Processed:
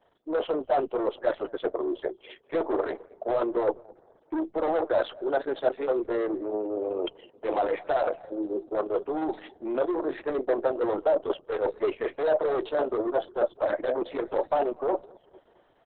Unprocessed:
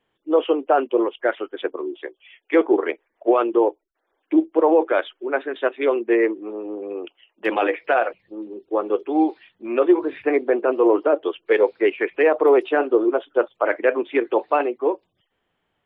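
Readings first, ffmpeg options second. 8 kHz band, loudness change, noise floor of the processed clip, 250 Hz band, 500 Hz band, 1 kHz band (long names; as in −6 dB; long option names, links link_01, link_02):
can't be measured, −8.0 dB, −63 dBFS, −10.0 dB, −7.0 dB, −6.5 dB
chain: -filter_complex "[0:a]aeval=exprs='(tanh(11.2*val(0)+0.1)-tanh(0.1))/11.2':channel_layout=same,areverse,acompressor=threshold=-34dB:ratio=8,areverse,equalizer=frequency=160:width_type=o:width=0.67:gain=-9,equalizer=frequency=630:width_type=o:width=0.67:gain=9,equalizer=frequency=2500:width_type=o:width=0.67:gain=-12,asplit=2[link_01][link_02];[link_02]adelay=217,lowpass=frequency=1400:poles=1,volume=-21.5dB,asplit=2[link_03][link_04];[link_04]adelay=217,lowpass=frequency=1400:poles=1,volume=0.45,asplit=2[link_05][link_06];[link_06]adelay=217,lowpass=frequency=1400:poles=1,volume=0.45[link_07];[link_03][link_05][link_07]amix=inputs=3:normalize=0[link_08];[link_01][link_08]amix=inputs=2:normalize=0,aresample=32000,aresample=44100,volume=7dB" -ar 48000 -c:a libopus -b:a 6k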